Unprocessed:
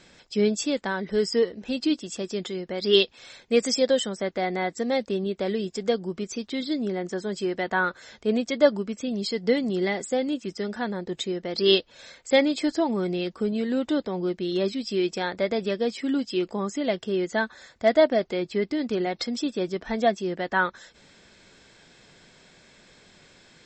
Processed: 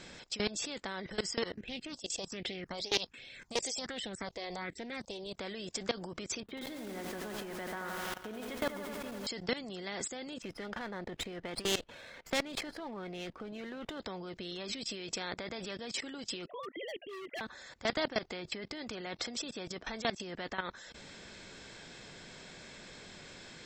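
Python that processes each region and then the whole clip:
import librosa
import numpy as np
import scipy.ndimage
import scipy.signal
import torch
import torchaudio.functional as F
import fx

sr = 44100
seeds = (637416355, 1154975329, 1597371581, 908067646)

y = fx.chain(x, sr, fx.high_shelf(hz=6600.0, db=3.5),
    fx.phaser_stages(stages=4, low_hz=200.0, high_hz=1200.0, hz=1.3, feedback_pct=30),
    fx.doppler_dist(depth_ms=0.16), at=(1.54, 5.37))
y = fx.chain(y, sr, fx.air_absorb(metres=480.0),
    fx.echo_crushed(ms=85, feedback_pct=80, bits=7, wet_db=-8.0), at=(6.4, 9.27))
y = fx.chain(y, sr, fx.lowpass(hz=3000.0, slope=12),
    fx.running_max(window=3), at=(10.42, 14.0))
y = fx.chain(y, sr, fx.sine_speech(),
    fx.overload_stage(gain_db=24.5), at=(16.46, 17.41))
y = fx.level_steps(y, sr, step_db=20)
y = fx.spectral_comp(y, sr, ratio=2.0)
y = F.gain(torch.from_numpy(y), -4.5).numpy()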